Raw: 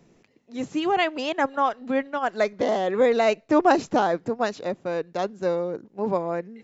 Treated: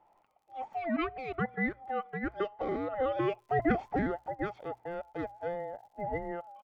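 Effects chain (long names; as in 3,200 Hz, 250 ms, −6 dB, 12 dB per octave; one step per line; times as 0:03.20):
frequency inversion band by band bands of 1,000 Hz
Chebyshev low-pass filter 1,700 Hz, order 2
mains-hum notches 60/120 Hz
comb filter 0.9 ms, depth 35%
surface crackle 22 per second −51 dBFS, from 0:03.29 130 per second
level −8 dB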